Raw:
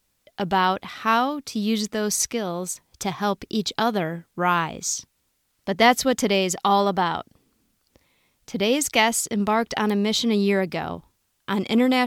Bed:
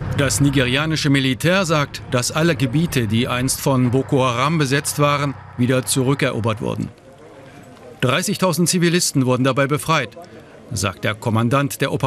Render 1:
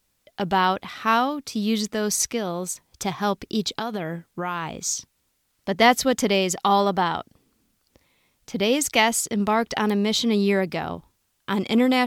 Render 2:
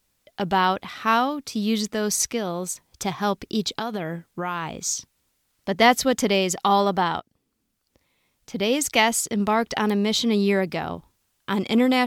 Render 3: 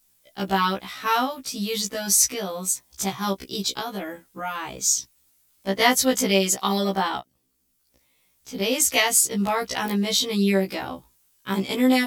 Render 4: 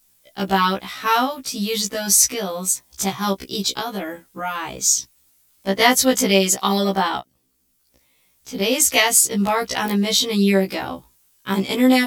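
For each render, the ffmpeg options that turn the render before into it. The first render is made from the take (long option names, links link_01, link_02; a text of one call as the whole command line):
ffmpeg -i in.wav -filter_complex "[0:a]asettb=1/sr,asplit=3[link_01][link_02][link_03];[link_01]atrim=end=3.694[link_04];[link_02]atrim=start=3.69:end=4.72,asetpts=PTS-STARTPTS,afade=type=in:duration=0.004:curve=qsin,afade=type=out:start_time=1.026:duration=0.004:curve=qsin,acompressor=threshold=-23dB:ratio=6:attack=3.2:release=140:knee=1:detection=peak[link_05];[link_03]atrim=start=4.716[link_06];[link_04][link_05]acrossfade=duration=0.004:curve1=hsin:curve2=qsin[link_07];[link_07][link_06]acrossfade=duration=0.004:curve1=qsin:curve2=hsin" out.wav
ffmpeg -i in.wav -filter_complex "[0:a]asplit=2[link_01][link_02];[link_01]atrim=end=7.2,asetpts=PTS-STARTPTS,afade=type=out:start_time=7.196:duration=0.004:curve=hsin:silence=0.211349[link_03];[link_02]atrim=start=7.2,asetpts=PTS-STARTPTS,afade=type=in:duration=1.78:silence=0.211349[link_04];[link_03][link_04]concat=n=2:v=0:a=1" out.wav
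ffmpeg -i in.wav -af "crystalizer=i=2:c=0,afftfilt=real='re*1.73*eq(mod(b,3),0)':imag='im*1.73*eq(mod(b,3),0)':win_size=2048:overlap=0.75" out.wav
ffmpeg -i in.wav -af "volume=4dB,alimiter=limit=-2dB:level=0:latency=1" out.wav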